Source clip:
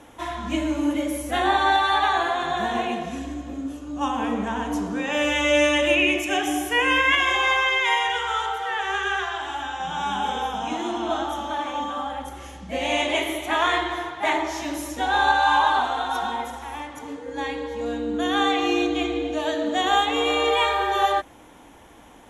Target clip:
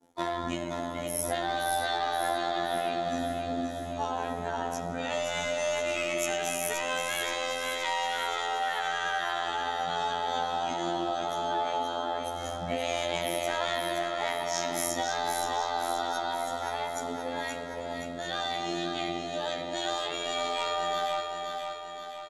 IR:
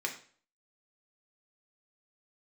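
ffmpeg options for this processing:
-filter_complex "[0:a]afftdn=nr=13:nf=-41,bandreject=f=1.1k:w=6,asplit=2[a][b];[b]highpass=f=720:p=1,volume=10dB,asoftclip=type=tanh:threshold=-6.5dB[c];[a][c]amix=inputs=2:normalize=0,lowpass=f=1.3k:p=1,volume=-6dB,asplit=2[d][e];[e]alimiter=limit=-20.5dB:level=0:latency=1:release=50,volume=2.5dB[f];[d][f]amix=inputs=2:normalize=0,acompressor=threshold=-27dB:ratio=8,asplit=4[g][h][i][j];[h]asetrate=22050,aresample=44100,atempo=2,volume=-12dB[k];[i]asetrate=35002,aresample=44100,atempo=1.25992,volume=-13dB[l];[j]asetrate=55563,aresample=44100,atempo=0.793701,volume=-17dB[m];[g][k][l][m]amix=inputs=4:normalize=0,agate=range=-33dB:threshold=-34dB:ratio=3:detection=peak,aexciter=amount=7.5:drive=3.3:freq=3.9k,afftfilt=real='hypot(re,im)*cos(PI*b)':imag='0':win_size=2048:overlap=0.75,aecho=1:1:524|1048|1572|2096|2620|3144|3668:0.531|0.292|0.161|0.0883|0.0486|0.0267|0.0147"

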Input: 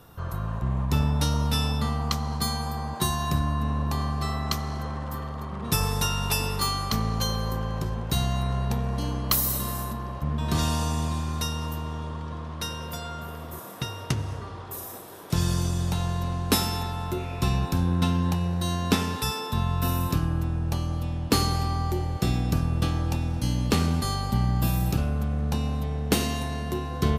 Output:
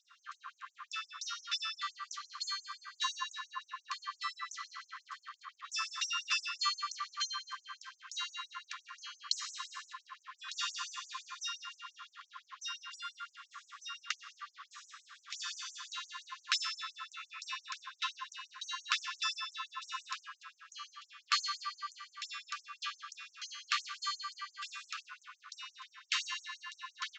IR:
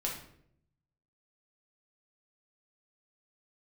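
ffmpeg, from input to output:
-af "aresample=16000,aresample=44100,aemphasis=mode=reproduction:type=50fm,afftfilt=real='re*gte(b*sr/1024,1000*pow(6000/1000,0.5+0.5*sin(2*PI*5.8*pts/sr)))':imag='im*gte(b*sr/1024,1000*pow(6000/1000,0.5+0.5*sin(2*PI*5.8*pts/sr)))':win_size=1024:overlap=0.75,volume=1dB"

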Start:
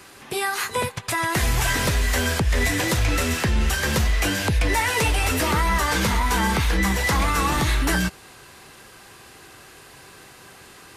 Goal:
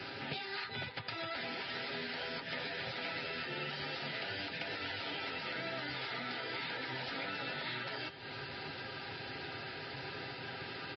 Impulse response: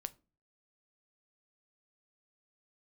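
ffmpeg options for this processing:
-filter_complex "[0:a]afftfilt=real='re*lt(hypot(re,im),0.224)':imag='im*lt(hypot(re,im),0.224)':win_size=1024:overlap=0.75,highpass=f=72:w=0.5412,highpass=f=72:w=1.3066,aecho=1:1:7.5:0.41,bandreject=f=197.6:t=h:w=4,bandreject=f=395.2:t=h:w=4,bandreject=f=592.8:t=h:w=4,bandreject=f=790.4:t=h:w=4,bandreject=f=988:t=h:w=4,bandreject=f=1.1856k:t=h:w=4,bandreject=f=1.3832k:t=h:w=4,bandreject=f=1.5808k:t=h:w=4,bandreject=f=1.7784k:t=h:w=4,bandreject=f=1.976k:t=h:w=4,bandreject=f=2.1736k:t=h:w=4,bandreject=f=2.3712k:t=h:w=4,bandreject=f=2.5688k:t=h:w=4,bandreject=f=2.7664k:t=h:w=4,bandreject=f=2.964k:t=h:w=4,bandreject=f=3.1616k:t=h:w=4,bandreject=f=3.3592k:t=h:w=4,bandreject=f=3.5568k:t=h:w=4,bandreject=f=3.7544k:t=h:w=4,alimiter=limit=-18dB:level=0:latency=1:release=89,acompressor=threshold=-39dB:ratio=12,asuperstop=centerf=1100:order=20:qfactor=5.9,asplit=2[a][b];[b]adelay=239.1,volume=-24dB,highshelf=f=4k:g=-5.38[c];[a][c]amix=inputs=2:normalize=0,aresample=11025,aresample=44100,volume=3dB" -ar 22050 -c:a libmp3lame -b:a 24k

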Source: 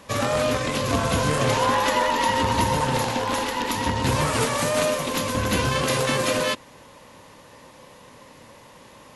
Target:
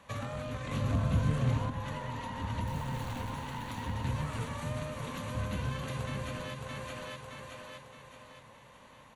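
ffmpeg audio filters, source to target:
-filter_complex "[0:a]asettb=1/sr,asplit=3[a][b][c];[a]atrim=end=2.674[d];[b]atrim=start=2.67:end=3.3,asetpts=PTS-STARTPTS,afade=t=in:d=0.004:c=qsin,afade=t=out:st=0.626:d=0.004:c=qsin,acrusher=bits=5:dc=4:mix=0:aa=0.000001[e];[c]atrim=start=3.296[f];[d][e]acrossfade=d=0.004:c1=hsin:c2=qsin[g];[g][f]acrossfade=d=0.004:c1=qsin:c2=hsin,equalizer=f=350:w=1.1:g=-8.5,bandreject=f=5.1k:w=5.3,asplit=2[h][i];[i]aecho=0:1:618|1236|1854|2472|3090:0.473|0.199|0.0835|0.0351|0.0147[j];[h][j]amix=inputs=2:normalize=0,asettb=1/sr,asplit=3[k][l][m];[k]atrim=end=0.714[n];[l]atrim=start=0.71:end=1.7,asetpts=PTS-STARTPTS,afade=t=in:d=0.004:c=qsin,afade=t=out:st=0.986:d=0.004:c=qsin,acontrast=70[o];[m]atrim=start=1.696[p];[n][o]acrossfade=d=0.004:c1=hsin:c2=qsin[q];[q][p]acrossfade=d=0.004:c1=qsin:c2=hsin,highshelf=f=4.3k:g=-9,acrossover=split=290[r][s];[s]acompressor=threshold=-32dB:ratio=10[t];[r][t]amix=inputs=2:normalize=0,volume=-7dB"

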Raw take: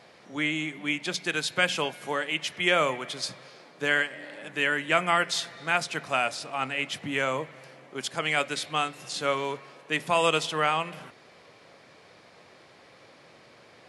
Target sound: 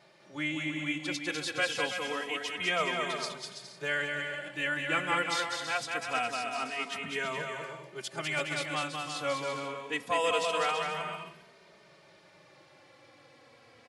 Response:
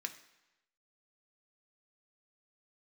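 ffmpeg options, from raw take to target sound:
-filter_complex "[0:a]aecho=1:1:200|330|414.5|469.4|505.1:0.631|0.398|0.251|0.158|0.1,asplit=2[a][b];[b]adelay=2.9,afreqshift=-0.25[c];[a][c]amix=inputs=2:normalize=1,volume=-3.5dB"

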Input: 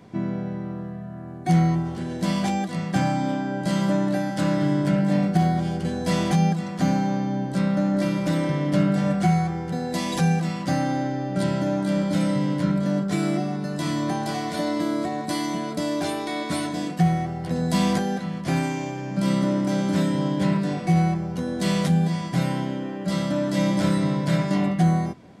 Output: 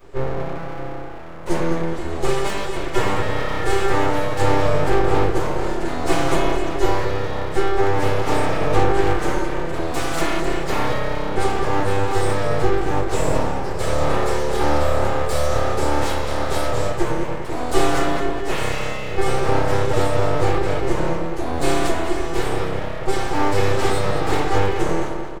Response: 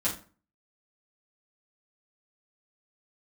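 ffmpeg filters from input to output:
-filter_complex "[0:a]aexciter=amount=1.6:drive=3.5:freq=6.6k,asplit=2[a][b];[b]adelay=212,lowpass=f=3.3k:p=1,volume=-6dB,asplit=2[c][d];[d]adelay=212,lowpass=f=3.3k:p=1,volume=0.52,asplit=2[e][f];[f]adelay=212,lowpass=f=3.3k:p=1,volume=0.52,asplit=2[g][h];[h]adelay=212,lowpass=f=3.3k:p=1,volume=0.52,asplit=2[i][j];[j]adelay=212,lowpass=f=3.3k:p=1,volume=0.52,asplit=2[k][l];[l]adelay=212,lowpass=f=3.3k:p=1,volume=0.52[m];[a][c][e][g][i][k][m]amix=inputs=7:normalize=0[n];[1:a]atrim=start_sample=2205,atrim=end_sample=6174[o];[n][o]afir=irnorm=-1:irlink=0,aeval=exprs='abs(val(0))':c=same,volume=-4dB"

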